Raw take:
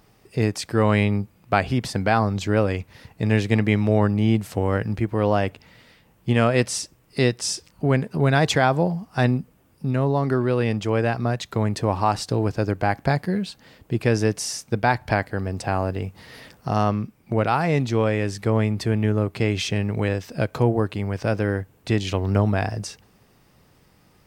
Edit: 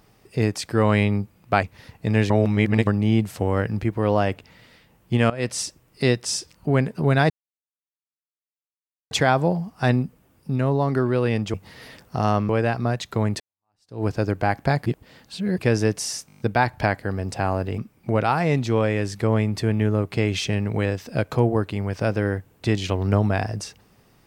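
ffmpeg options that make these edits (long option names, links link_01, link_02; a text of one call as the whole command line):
ffmpeg -i in.wav -filter_complex "[0:a]asplit=18[link_01][link_02][link_03][link_04][link_05][link_06][link_07][link_08][link_09][link_10][link_11][link_12][link_13][link_14][link_15][link_16][link_17][link_18];[link_01]atrim=end=1.632[link_19];[link_02]atrim=start=2.788:end=3.462[link_20];[link_03]atrim=start=3.458:end=4.032,asetpts=PTS-STARTPTS,areverse[link_21];[link_04]atrim=start=4.028:end=6.46,asetpts=PTS-STARTPTS,afade=type=out:start_time=2.428:duration=0.004:curve=hsin:silence=0.11885[link_22];[link_05]atrim=start=6.46:end=8.46,asetpts=PTS-STARTPTS,afade=type=in:duration=0.3:silence=0.11885,afade=type=out:start_time=1.996:duration=0.004:curve=hsin,apad=pad_dur=1.81[link_23];[link_06]atrim=start=8.46:end=10.892,asetpts=PTS-STARTPTS,afade=type=in:duration=0.004:curve=hsin[link_24];[link_07]atrim=start=16.058:end=17.012[link_25];[link_08]atrim=start=10.888:end=11.8,asetpts=PTS-STARTPTS,afade=type=out:start_time=0.908:duration=0.004:curve=hsin[link_26];[link_09]atrim=start=11.8:end=13.262,asetpts=PTS-STARTPTS,afade=type=in:duration=0.64:curve=exp[link_27];[link_10]atrim=start=13.258:end=13.982,asetpts=PTS-STARTPTS,areverse[link_28];[link_11]atrim=start=13.978:end=14.692[link_29];[link_12]atrim=start=14.668:end=14.692[link_30];[link_13]atrim=start=14.668:end=14.692[link_31];[link_14]atrim=start=14.668:end=14.692[link_32];[link_15]atrim=start=14.668:end=14.692[link_33];[link_16]atrim=start=14.668:end=14.692[link_34];[link_17]atrim=start=14.668:end=16.062[link_35];[link_18]atrim=start=17.008[link_36];[link_19][link_20]acrossfade=duration=0.004:curve1=hsin:curve2=hsin[link_37];[link_37][link_21]acrossfade=duration=0.004:curve1=hsin:curve2=hsin[link_38];[link_22][link_23][link_24]concat=n=3:v=0:a=1[link_39];[link_38][link_39]acrossfade=duration=0.004:curve1=hsin:curve2=hsin[link_40];[link_40][link_25]acrossfade=duration=0.004:curve1=hsin:curve2=hsin[link_41];[link_26][link_27]concat=n=2:v=0:a=1[link_42];[link_41][link_42]acrossfade=duration=0.004:curve1=hsin:curve2=hsin[link_43];[link_43][link_28]acrossfade=duration=0.004:curve1=hsin:curve2=hsin[link_44];[link_44][link_29]acrossfade=duration=0.004:curve1=hsin:curve2=hsin[link_45];[link_45][link_30]acrossfade=duration=0.004:curve1=hsin:curve2=hsin[link_46];[link_46][link_31]acrossfade=duration=0.004:curve1=hsin:curve2=hsin[link_47];[link_47][link_32]acrossfade=duration=0.004:curve1=hsin:curve2=hsin[link_48];[link_48][link_33]acrossfade=duration=0.004:curve1=hsin:curve2=hsin[link_49];[link_49][link_34]acrossfade=duration=0.004:curve1=hsin:curve2=hsin[link_50];[link_50][link_35]acrossfade=duration=0.004:curve1=hsin:curve2=hsin[link_51];[link_51][link_36]acrossfade=duration=0.004:curve1=hsin:curve2=hsin" out.wav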